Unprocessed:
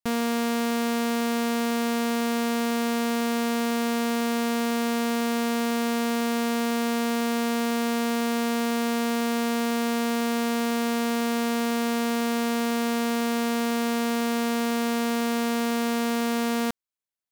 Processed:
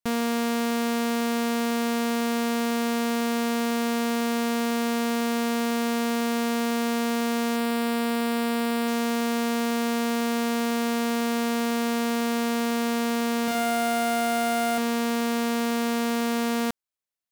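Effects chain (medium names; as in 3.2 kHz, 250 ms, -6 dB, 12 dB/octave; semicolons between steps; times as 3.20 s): 7.56–8.88 s: peaking EQ 6.3 kHz -13 dB 0.2 oct; 13.44–14.78 s: flutter echo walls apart 6.1 m, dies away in 0.67 s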